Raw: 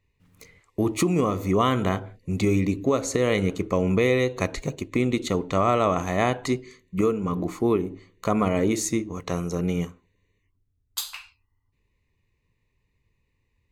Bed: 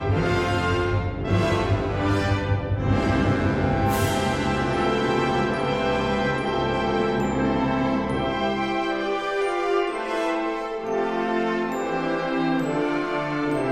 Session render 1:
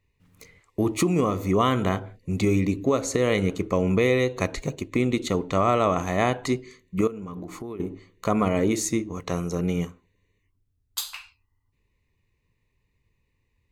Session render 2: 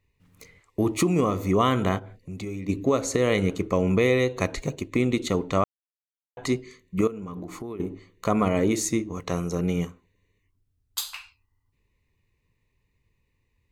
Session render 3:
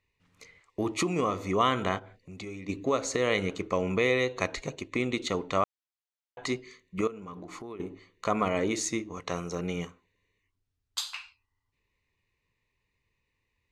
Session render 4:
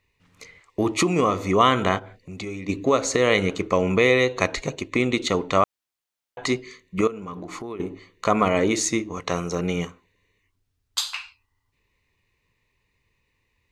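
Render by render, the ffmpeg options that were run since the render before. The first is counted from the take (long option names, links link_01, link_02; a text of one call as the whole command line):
ffmpeg -i in.wav -filter_complex "[0:a]asettb=1/sr,asplit=3[link_01][link_02][link_03];[link_01]atrim=end=7.074[link_04];[link_02]atrim=start=7.07:end=7.8,asetpts=PTS-STARTPTS,afade=type=in:duration=0.004:curve=qsin,afade=type=out:start_time=0.726:duration=0.004:curve=qsin,acompressor=threshold=-32dB:ratio=8:attack=3.2:release=140:knee=1:detection=peak[link_05];[link_03]atrim=start=7.796[link_06];[link_04][link_05]acrossfade=duration=0.004:curve1=hsin:curve2=qsin[link_07];[link_07][link_06]acrossfade=duration=0.004:curve1=qsin:curve2=hsin" out.wav
ffmpeg -i in.wav -filter_complex "[0:a]asplit=3[link_01][link_02][link_03];[link_01]afade=type=out:start_time=1.98:duration=0.02[link_04];[link_02]acompressor=threshold=-40dB:ratio=2:attack=3.2:release=140:knee=1:detection=peak,afade=type=in:start_time=1.98:duration=0.02,afade=type=out:start_time=2.68:duration=0.02[link_05];[link_03]afade=type=in:start_time=2.68:duration=0.02[link_06];[link_04][link_05][link_06]amix=inputs=3:normalize=0,asplit=3[link_07][link_08][link_09];[link_07]atrim=end=5.64,asetpts=PTS-STARTPTS,afade=type=out:start_time=5.636:duration=0.004:curve=hsin[link_10];[link_08]atrim=start=5.64:end=6.37,asetpts=PTS-STARTPTS,volume=0[link_11];[link_09]atrim=start=6.37,asetpts=PTS-STARTPTS,afade=type=in:duration=0.004:curve=hsin[link_12];[link_10][link_11][link_12]concat=n=3:v=0:a=1" out.wav
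ffmpeg -i in.wav -af "lowpass=6400,lowshelf=frequency=420:gain=-10.5" out.wav
ffmpeg -i in.wav -af "volume=7.5dB" out.wav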